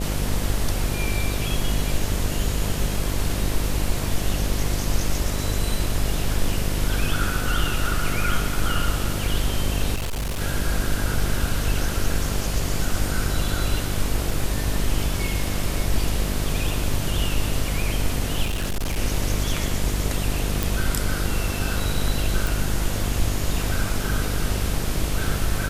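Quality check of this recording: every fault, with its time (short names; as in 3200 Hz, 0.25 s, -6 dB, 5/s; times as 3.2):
buzz 50 Hz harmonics 14 -27 dBFS
9.95–10.42 clipped -23 dBFS
14.31 gap 2.6 ms
18.44–18.99 clipped -21 dBFS
20.63 pop
22.47 pop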